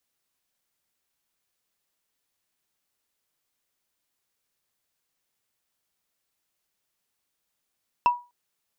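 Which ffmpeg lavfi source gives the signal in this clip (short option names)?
-f lavfi -i "aevalsrc='0.237*pow(10,-3*t/0.28)*sin(2*PI*970*t)+0.0596*pow(10,-3*t/0.083)*sin(2*PI*2674.3*t)+0.015*pow(10,-3*t/0.037)*sin(2*PI*5241.9*t)+0.00376*pow(10,-3*t/0.02)*sin(2*PI*8665*t)+0.000944*pow(10,-3*t/0.013)*sin(2*PI*12939.8*t)':d=0.25:s=44100"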